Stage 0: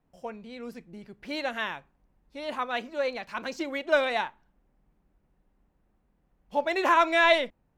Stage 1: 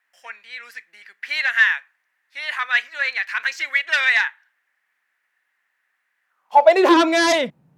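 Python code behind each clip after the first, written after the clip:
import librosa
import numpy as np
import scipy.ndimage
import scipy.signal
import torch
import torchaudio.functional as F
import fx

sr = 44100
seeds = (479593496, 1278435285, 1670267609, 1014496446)

y = fx.fold_sine(x, sr, drive_db=9, ceiling_db=-8.5)
y = fx.filter_sweep_highpass(y, sr, from_hz=1800.0, to_hz=150.0, start_s=6.24, end_s=7.25, q=5.0)
y = y * librosa.db_to_amplitude(-5.0)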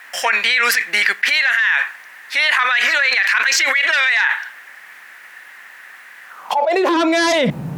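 y = fx.env_flatten(x, sr, amount_pct=100)
y = y * librosa.db_to_amplitude(-8.5)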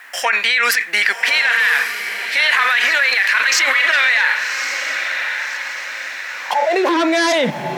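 y = scipy.signal.sosfilt(scipy.signal.butter(2, 200.0, 'highpass', fs=sr, output='sos'), x)
y = fx.echo_diffused(y, sr, ms=1140, feedback_pct=50, wet_db=-7)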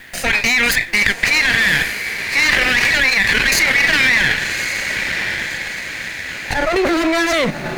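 y = fx.lower_of_two(x, sr, delay_ms=0.45)
y = y * librosa.db_to_amplitude(1.5)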